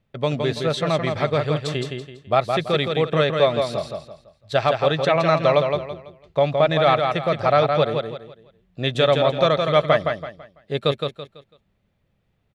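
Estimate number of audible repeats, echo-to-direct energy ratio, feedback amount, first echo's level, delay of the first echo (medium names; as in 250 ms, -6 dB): 4, -4.5 dB, 32%, -5.0 dB, 166 ms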